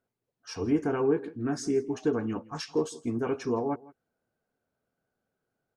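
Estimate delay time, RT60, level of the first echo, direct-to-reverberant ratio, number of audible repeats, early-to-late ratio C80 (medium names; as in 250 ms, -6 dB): 165 ms, no reverb, -21.5 dB, no reverb, 1, no reverb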